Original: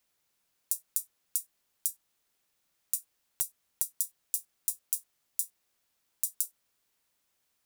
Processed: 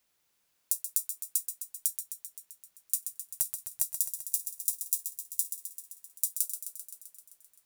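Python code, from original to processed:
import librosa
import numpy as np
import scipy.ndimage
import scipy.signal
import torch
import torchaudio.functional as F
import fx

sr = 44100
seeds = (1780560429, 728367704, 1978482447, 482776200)

y = fx.peak_eq(x, sr, hz=110.0, db=14.5, octaves=0.59, at=(2.97, 5.4))
y = fx.echo_thinned(y, sr, ms=130, feedback_pct=70, hz=420.0, wet_db=-8.5)
y = F.gain(torch.from_numpy(y), 1.5).numpy()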